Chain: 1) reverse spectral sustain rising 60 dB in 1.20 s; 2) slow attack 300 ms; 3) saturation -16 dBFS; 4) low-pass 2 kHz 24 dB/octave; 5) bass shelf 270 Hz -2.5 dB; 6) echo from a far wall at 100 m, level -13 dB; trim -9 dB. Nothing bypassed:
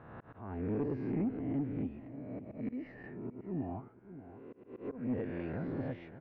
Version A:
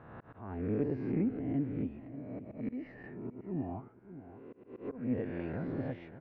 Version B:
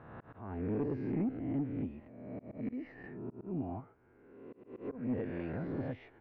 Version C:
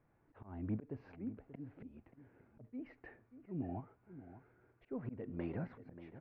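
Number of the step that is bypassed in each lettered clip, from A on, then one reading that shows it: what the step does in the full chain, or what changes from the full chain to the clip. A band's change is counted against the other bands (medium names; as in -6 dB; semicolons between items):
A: 3, distortion -18 dB; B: 6, echo-to-direct -15.0 dB to none; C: 1, 500 Hz band -2.5 dB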